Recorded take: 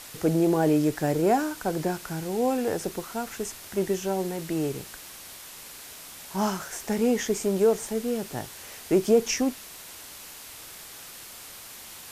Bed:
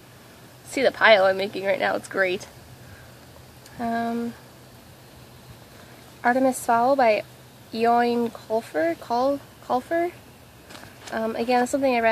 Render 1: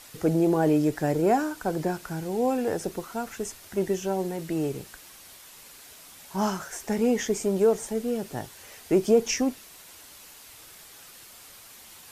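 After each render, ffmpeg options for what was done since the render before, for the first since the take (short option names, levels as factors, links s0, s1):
-af "afftdn=nr=6:nf=-44"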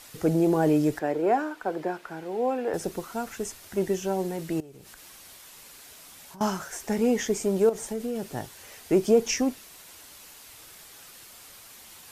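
-filter_complex "[0:a]asettb=1/sr,asplit=3[s0][s1][s2];[s0]atrim=end=0.994[s3];[s1]atrim=start=0.99:end=2.74,asetpts=PTS-STARTPTS,afade=t=in:d=0.004:c=qsin,afade=t=out:st=1.746:d=0.004:c=qsin,acrossover=split=270 3500:gain=0.141 1 0.2[s4][s5][s6];[s4][s5][s6]amix=inputs=3:normalize=0[s7];[s2]atrim=start=2.736[s8];[s3][s7]acrossfade=d=0.004:c1=hsin:c2=qsin[s9];[s9][s8]acrossfade=d=0.004:c1=qsin:c2=hsin,asettb=1/sr,asplit=3[s10][s11][s12];[s10]atrim=end=4.604[s13];[s11]atrim=start=4.6:end=6.41,asetpts=PTS-STARTPTS,afade=t=in:d=0.004:c=qsin,afade=t=out:st=1.806:d=0.004:c=qsin,acompressor=threshold=0.00708:ratio=12:attack=3.2:release=140:knee=1:detection=peak[s14];[s12]atrim=start=6.406[s15];[s13][s14]acrossfade=d=0.004:c1=hsin:c2=qsin[s16];[s16][s15]acrossfade=d=0.004:c1=qsin:c2=hsin,asettb=1/sr,asplit=3[s17][s18][s19];[s17]atrim=end=7.694[s20];[s18]atrim=start=7.69:end=8.27,asetpts=PTS-STARTPTS,afade=t=in:d=0.004:c=qsin,afade=t=out:st=0.576:d=0.004:c=qsin,acompressor=threshold=0.0501:ratio=6:attack=3.2:release=140:knee=1:detection=peak[s21];[s19]atrim=start=8.266[s22];[s20][s21]acrossfade=d=0.004:c1=hsin:c2=qsin[s23];[s23][s22]acrossfade=d=0.004:c1=qsin:c2=hsin"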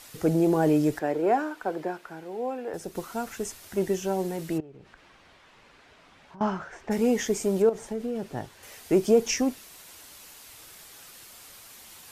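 -filter_complex "[0:a]asplit=3[s0][s1][s2];[s0]afade=t=out:st=4.57:d=0.02[s3];[s1]lowpass=2400,afade=t=in:st=4.57:d=0.02,afade=t=out:st=6.9:d=0.02[s4];[s2]afade=t=in:st=6.9:d=0.02[s5];[s3][s4][s5]amix=inputs=3:normalize=0,asettb=1/sr,asplit=3[s6][s7][s8];[s6]atrim=end=7.624[s9];[s7]atrim=start=7.62:end=8.63,asetpts=PTS-STARTPTS,afade=t=in:d=0.004:c=qsin,afade=t=out:st=1.006:d=0.004:c=qsin,lowpass=f=2700:p=1[s10];[s8]atrim=start=8.626[s11];[s9][s10]acrossfade=d=0.004:c1=hsin:c2=qsin[s12];[s12][s11]acrossfade=d=0.004:c1=qsin:c2=hsin,asplit=2[s13][s14];[s13]atrim=end=2.95,asetpts=PTS-STARTPTS,afade=t=out:st=1.64:d=1.31:c=qua:silence=0.501187[s15];[s14]atrim=start=2.95,asetpts=PTS-STARTPTS,afade=t=in:d=0.004:c=hsin:silence=0.501187[s16];[s15][s16]concat=n=2:v=0:a=1"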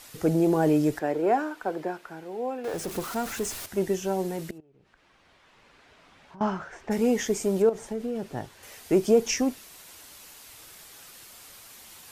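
-filter_complex "[0:a]asettb=1/sr,asplit=3[s0][s1][s2];[s0]atrim=end=2.644[s3];[s1]atrim=start=2.64:end=3.66,asetpts=PTS-STARTPTS,afade=t=in:d=0.004:c=qsin,afade=t=out:st=1.016:d=0.004:c=qsin,aeval=exprs='val(0)+0.5*0.02*sgn(val(0))':c=same[s4];[s2]atrim=start=3.656[s5];[s3][s4]acrossfade=d=0.004:c1=hsin:c2=qsin[s6];[s6][s5]acrossfade=d=0.004:c1=qsin:c2=hsin,asplit=2[s7][s8];[s7]atrim=end=4.51,asetpts=PTS-STARTPTS,afade=t=out:st=4.506:d=0.004:c=hsin:silence=0.0891251[s9];[s8]atrim=start=4.51,asetpts=PTS-STARTPTS,afade=t=in:d=2.04:c=qsin:silence=0.0891251[s10];[s9][s10]concat=n=2:v=0:a=1"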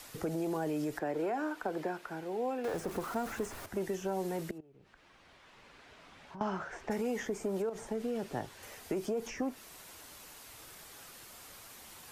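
-filter_complex "[0:a]alimiter=limit=0.1:level=0:latency=1:release=95,acrossover=split=260|780|1800[s0][s1][s2][s3];[s0]acompressor=threshold=0.00708:ratio=4[s4];[s1]acompressor=threshold=0.0158:ratio=4[s5];[s2]acompressor=threshold=0.01:ratio=4[s6];[s3]acompressor=threshold=0.00282:ratio=4[s7];[s4][s5][s6][s7]amix=inputs=4:normalize=0"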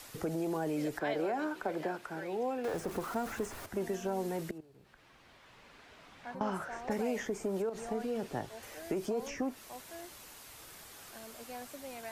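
-filter_complex "[1:a]volume=0.0562[s0];[0:a][s0]amix=inputs=2:normalize=0"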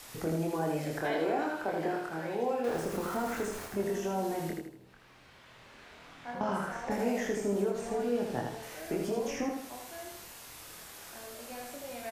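-filter_complex "[0:a]asplit=2[s0][s1];[s1]adelay=25,volume=0.708[s2];[s0][s2]amix=inputs=2:normalize=0,aecho=1:1:79|158|237|316|395:0.631|0.252|0.101|0.0404|0.0162"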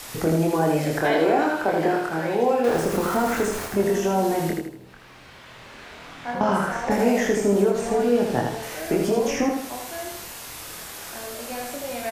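-af "volume=3.55"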